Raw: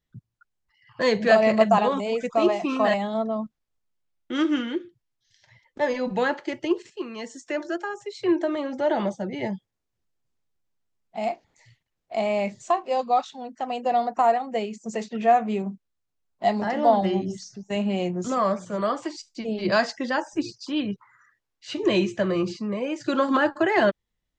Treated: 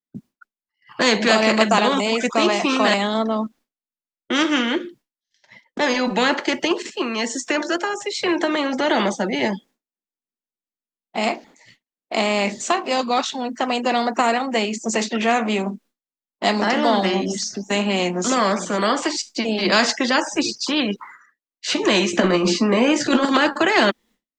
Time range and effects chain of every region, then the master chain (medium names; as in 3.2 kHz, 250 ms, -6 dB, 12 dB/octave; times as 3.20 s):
22.13–23.25 s: peaking EQ 260 Hz +10.5 dB 2.6 oct + compressor with a negative ratio -17 dBFS, ratio -0.5 + doubling 17 ms -9 dB
whole clip: expander -49 dBFS; resonant low shelf 160 Hz -13 dB, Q 3; spectrum-flattening compressor 2:1